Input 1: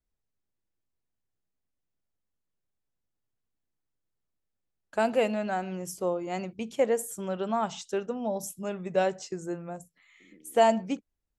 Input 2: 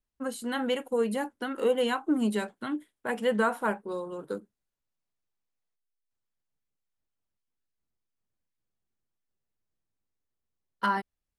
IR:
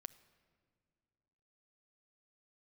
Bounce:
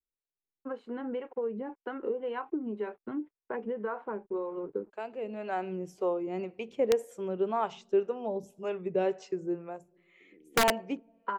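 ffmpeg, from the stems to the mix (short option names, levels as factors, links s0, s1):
-filter_complex "[0:a]highshelf=f=5700:g=-11.5,volume=0.501,afade=t=in:st=5.2:d=0.4:silence=0.266073,asplit=2[s0][s1];[s1]volume=0.562[s2];[1:a]aeval=exprs='sgn(val(0))*max(abs(val(0))-0.00119,0)':c=same,lowpass=1500,acompressor=threshold=0.0251:ratio=10,adelay=450,volume=0.841[s3];[2:a]atrim=start_sample=2205[s4];[s2][s4]afir=irnorm=-1:irlink=0[s5];[s0][s3][s5]amix=inputs=3:normalize=0,equalizer=f=400:t=o:w=0.67:g=12,equalizer=f=1000:t=o:w=0.67:g=4,equalizer=f=2500:t=o:w=0.67:g=7,equalizer=f=10000:t=o:w=0.67:g=-8,acrossover=split=440[s6][s7];[s6]aeval=exprs='val(0)*(1-0.7/2+0.7/2*cos(2*PI*1.9*n/s))':c=same[s8];[s7]aeval=exprs='val(0)*(1-0.7/2-0.7/2*cos(2*PI*1.9*n/s))':c=same[s9];[s8][s9]amix=inputs=2:normalize=0,aeval=exprs='(mod(6.68*val(0)+1,2)-1)/6.68':c=same"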